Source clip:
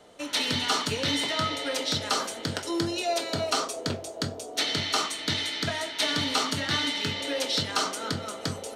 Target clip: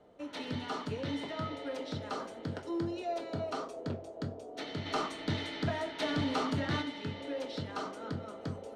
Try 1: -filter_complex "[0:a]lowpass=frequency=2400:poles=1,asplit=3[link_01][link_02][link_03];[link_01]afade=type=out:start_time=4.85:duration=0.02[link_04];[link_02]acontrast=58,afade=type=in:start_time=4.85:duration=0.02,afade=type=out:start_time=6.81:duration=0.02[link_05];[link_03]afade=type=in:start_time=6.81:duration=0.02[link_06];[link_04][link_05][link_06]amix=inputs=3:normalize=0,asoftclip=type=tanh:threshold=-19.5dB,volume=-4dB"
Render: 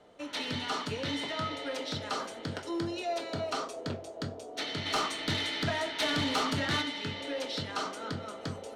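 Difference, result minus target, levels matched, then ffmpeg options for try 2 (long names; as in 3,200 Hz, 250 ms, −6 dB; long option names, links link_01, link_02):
2,000 Hz band +3.0 dB
-filter_complex "[0:a]lowpass=frequency=660:poles=1,asplit=3[link_01][link_02][link_03];[link_01]afade=type=out:start_time=4.85:duration=0.02[link_04];[link_02]acontrast=58,afade=type=in:start_time=4.85:duration=0.02,afade=type=out:start_time=6.81:duration=0.02[link_05];[link_03]afade=type=in:start_time=6.81:duration=0.02[link_06];[link_04][link_05][link_06]amix=inputs=3:normalize=0,asoftclip=type=tanh:threshold=-19.5dB,volume=-4dB"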